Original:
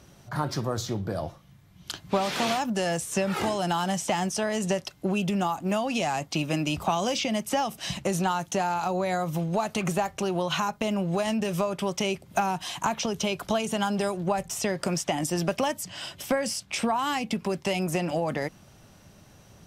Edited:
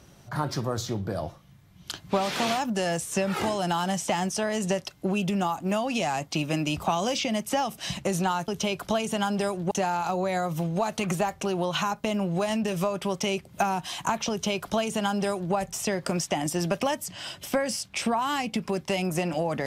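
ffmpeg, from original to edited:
-filter_complex "[0:a]asplit=3[a][b][c];[a]atrim=end=8.482[d];[b]atrim=start=13.078:end=14.312[e];[c]atrim=start=8.478[f];[d][e]acrossfade=d=0.004:c1=hsin:c2=hsin[g];[g][f]acrossfade=d=0.004:c1=hsin:c2=hsin"

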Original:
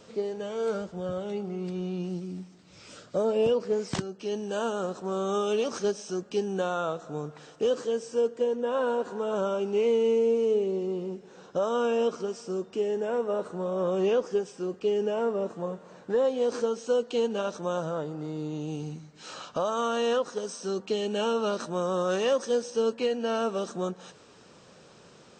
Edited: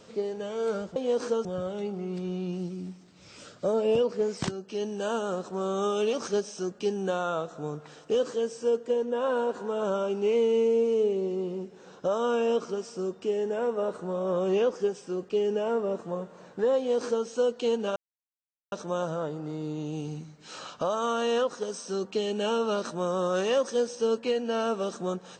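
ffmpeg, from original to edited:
-filter_complex "[0:a]asplit=4[a][b][c][d];[a]atrim=end=0.962[e];[b]atrim=start=16.278:end=16.772[f];[c]atrim=start=0.958:end=17.47,asetpts=PTS-STARTPTS,afade=t=out:st=16.508:d=0.004:c=hsin,apad=pad_dur=0.76[g];[d]atrim=start=17.47,asetpts=PTS-STARTPTS,afade=t=in:d=0.004:c=hsin[h];[e][f]acrossfade=d=0.004:c1=hsin:c2=hsin[i];[g][h]concat=n=2:v=0:a=1[j];[i][j]acrossfade=d=0.004:c1=hsin:c2=hsin"

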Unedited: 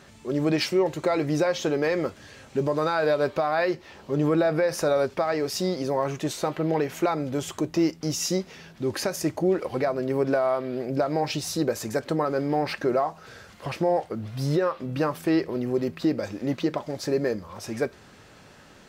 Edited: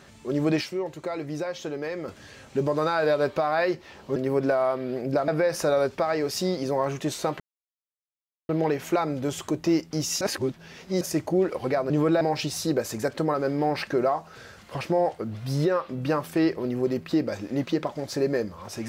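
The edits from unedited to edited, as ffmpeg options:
-filter_complex "[0:a]asplit=10[a][b][c][d][e][f][g][h][i][j];[a]atrim=end=0.612[k];[b]atrim=start=0.608:end=2.082,asetpts=PTS-STARTPTS,volume=-7.5dB[l];[c]atrim=start=2.078:end=4.162[m];[d]atrim=start=9.998:end=11.122[n];[e]atrim=start=4.468:end=6.59,asetpts=PTS-STARTPTS,afade=t=out:st=2.118:d=0.004:c=hsin,apad=pad_dur=1.09[o];[f]atrim=start=6.59:end=8.312,asetpts=PTS-STARTPTS,afade=t=in:d=0.004:c=hsin[p];[g]atrim=start=8.308:end=9.112,asetpts=PTS-STARTPTS,areverse[q];[h]atrim=start=9.108:end=10.002[r];[i]atrim=start=4.158:end=4.472[s];[j]atrim=start=11.118[t];[k][l]acrossfade=d=0.004:c1=hsin:c2=hsin[u];[u][m]acrossfade=d=0.004:c1=hsin:c2=hsin[v];[v][n]acrossfade=d=0.004:c1=hsin:c2=hsin[w];[o][p]concat=n=2:v=0:a=1[x];[w][x]acrossfade=d=0.004:c1=hsin:c2=hsin[y];[y][q]acrossfade=d=0.004:c1=hsin:c2=hsin[z];[z][r]acrossfade=d=0.004:c1=hsin:c2=hsin[aa];[aa][s]acrossfade=d=0.004:c1=hsin:c2=hsin[ab];[ab][t]acrossfade=d=0.004:c1=hsin:c2=hsin"

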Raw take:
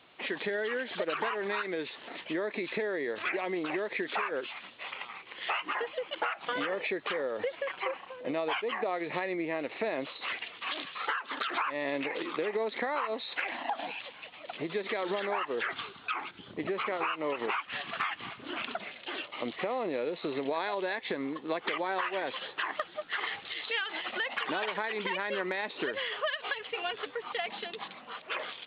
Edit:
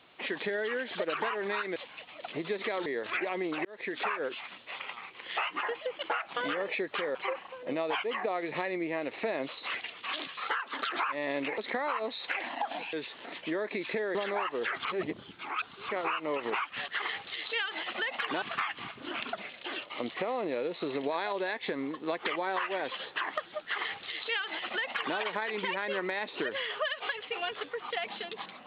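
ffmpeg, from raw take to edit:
-filter_complex "[0:a]asplit=12[a][b][c][d][e][f][g][h][i][j][k][l];[a]atrim=end=1.762[m];[b]atrim=start=14.008:end=15.112[n];[c]atrim=start=2.978:end=3.77,asetpts=PTS-STARTPTS,afade=t=out:st=0.788:d=0.004:c=hsin[o];[d]atrim=start=3.77:end=7.272,asetpts=PTS-STARTPTS,afade=t=in:d=0.31[p];[e]atrim=start=7.728:end=12.162[q];[f]atrim=start=12.658:end=14.012[r];[g]atrim=start=1.758:end=2.982[s];[h]atrim=start=15.108:end=15.812[t];[i]atrim=start=15.808:end=16.852,asetpts=PTS-STARTPTS,areverse[u];[j]atrim=start=16.848:end=17.842[v];[k]atrim=start=23.058:end=24.602[w];[l]atrim=start=17.838[x];[m][n]acrossfade=d=0.004:c1=hsin:c2=hsin[y];[o][p]concat=n=2:v=0:a=1[z];[y][z]acrossfade=d=0.004:c1=hsin:c2=hsin[aa];[aa][q]acrossfade=d=0.004:c1=hsin:c2=hsin[ab];[ab][r]acrossfade=d=0.004:c1=hsin:c2=hsin[ac];[ac][s]acrossfade=d=0.004:c1=hsin:c2=hsin[ad];[ad][t]acrossfade=d=0.004:c1=hsin:c2=hsin[ae];[ae][u]acrossfade=d=0.004:c1=hsin:c2=hsin[af];[af][v]acrossfade=d=0.004:c1=hsin:c2=hsin[ag];[ag][w]acrossfade=d=0.004:c1=hsin:c2=hsin[ah];[ah][x]acrossfade=d=0.004:c1=hsin:c2=hsin"

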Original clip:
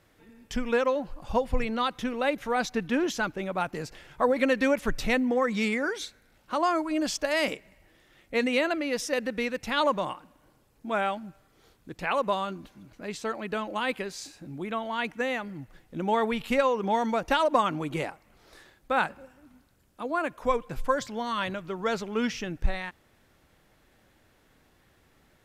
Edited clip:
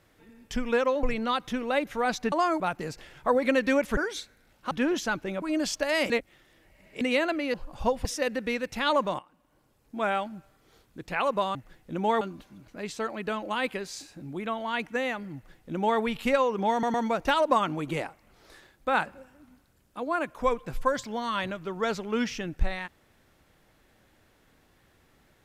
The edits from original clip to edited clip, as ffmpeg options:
-filter_complex "[0:a]asplit=16[a][b][c][d][e][f][g][h][i][j][k][l][m][n][o][p];[a]atrim=end=1.032[q];[b]atrim=start=1.538:end=2.832[r];[c]atrim=start=6.558:end=6.842[s];[d]atrim=start=3.538:end=4.912[t];[e]atrim=start=5.818:end=6.562[u];[f]atrim=start=2.828:end=3.542[v];[g]atrim=start=6.838:end=7.522[w];[h]atrim=start=7.518:end=8.432,asetpts=PTS-STARTPTS,areverse[x];[i]atrim=start=8.428:end=8.962[y];[j]atrim=start=1.028:end=1.542[z];[k]atrim=start=8.958:end=10.1,asetpts=PTS-STARTPTS,afade=t=out:st=1.138:d=0.004:c=hsin:silence=0.141254[aa];[l]atrim=start=10.1:end=12.462,asetpts=PTS-STARTPTS,afade=t=in:d=0.78:silence=0.141254[ab];[m]atrim=start=15.588:end=16.252[ac];[n]atrim=start=12.458:end=17.082[ad];[o]atrim=start=16.968:end=17.082[ae];[p]atrim=start=16.968[af];[q][r]acrossfade=d=0.004:c1=hsin:c2=hsin[ag];[ag][s]acrossfade=d=0.004:c1=hsin:c2=hsin[ah];[ah][t]acrossfade=d=0.004:c1=hsin:c2=hsin[ai];[ai][u]acrossfade=d=0.004:c1=hsin:c2=hsin[aj];[aj][v]acrossfade=d=0.004:c1=hsin:c2=hsin[ak];[ak][w]acrossfade=d=0.004:c1=hsin:c2=hsin[al];[al][x]acrossfade=d=0.004:c1=hsin:c2=hsin[am];[am][y]acrossfade=d=0.004:c1=hsin:c2=hsin[an];[an][z]acrossfade=d=0.004:c1=hsin:c2=hsin[ao];[aa][ab]concat=n=2:v=0:a=1[ap];[ao][ap]acrossfade=d=0.004:c1=hsin:c2=hsin[aq];[aq][ac]acrossfade=d=0.004:c1=hsin:c2=hsin[ar];[ar][ad]acrossfade=d=0.004:c1=hsin:c2=hsin[as];[as][ae]acrossfade=d=0.004:c1=hsin:c2=hsin[at];[at][af]acrossfade=d=0.004:c1=hsin:c2=hsin"

